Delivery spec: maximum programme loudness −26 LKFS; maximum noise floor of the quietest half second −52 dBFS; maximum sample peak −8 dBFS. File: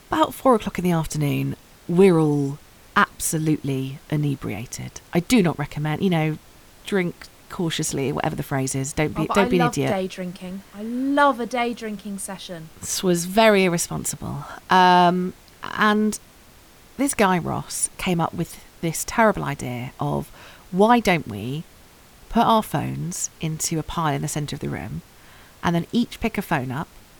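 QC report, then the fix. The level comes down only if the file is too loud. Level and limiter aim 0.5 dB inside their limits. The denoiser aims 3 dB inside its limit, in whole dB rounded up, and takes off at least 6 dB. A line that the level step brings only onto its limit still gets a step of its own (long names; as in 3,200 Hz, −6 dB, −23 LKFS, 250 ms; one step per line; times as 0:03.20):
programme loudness −22.0 LKFS: out of spec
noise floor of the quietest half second −49 dBFS: out of spec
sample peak −4.5 dBFS: out of spec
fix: level −4.5 dB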